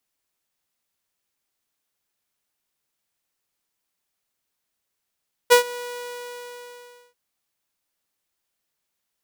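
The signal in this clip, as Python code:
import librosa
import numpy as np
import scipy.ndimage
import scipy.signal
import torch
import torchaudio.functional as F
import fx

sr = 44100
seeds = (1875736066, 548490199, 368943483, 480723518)

y = fx.adsr_tone(sr, wave='saw', hz=487.0, attack_ms=23.0, decay_ms=106.0, sustain_db=-21.5, held_s=0.26, release_ms=1380.0, level_db=-6.0)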